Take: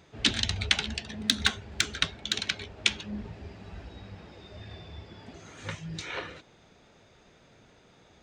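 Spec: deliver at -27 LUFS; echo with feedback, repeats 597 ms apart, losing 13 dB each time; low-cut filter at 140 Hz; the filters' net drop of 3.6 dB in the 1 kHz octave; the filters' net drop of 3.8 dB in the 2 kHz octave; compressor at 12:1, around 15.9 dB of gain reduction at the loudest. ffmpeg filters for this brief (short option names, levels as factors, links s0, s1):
-af "highpass=140,equalizer=f=1000:t=o:g=-3.5,equalizer=f=2000:t=o:g=-4,acompressor=threshold=0.00891:ratio=12,aecho=1:1:597|1194|1791:0.224|0.0493|0.0108,volume=10"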